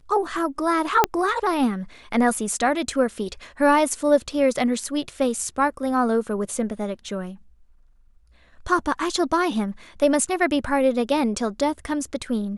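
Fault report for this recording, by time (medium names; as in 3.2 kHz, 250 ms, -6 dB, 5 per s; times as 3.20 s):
1.04 s: pop -2 dBFS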